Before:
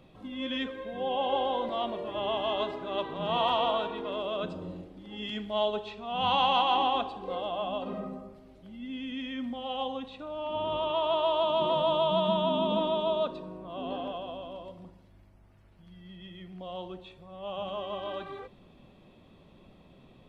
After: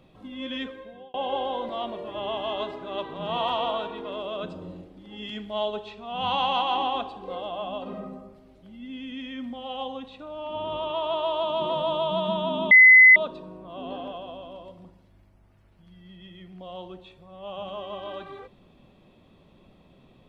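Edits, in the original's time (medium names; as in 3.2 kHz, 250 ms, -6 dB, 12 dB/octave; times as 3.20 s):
0.66–1.14 s: fade out
12.71–13.16 s: bleep 2.03 kHz -8.5 dBFS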